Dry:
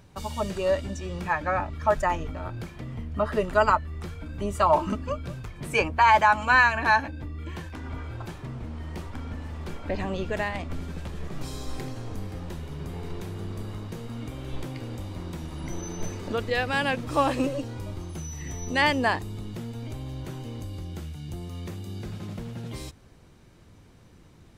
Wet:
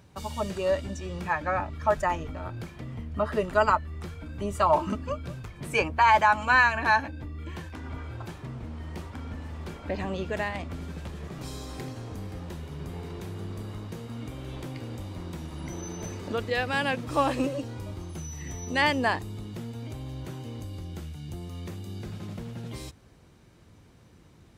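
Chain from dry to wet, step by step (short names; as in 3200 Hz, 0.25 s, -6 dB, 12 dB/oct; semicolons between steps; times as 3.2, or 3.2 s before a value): HPF 43 Hz; gain -1.5 dB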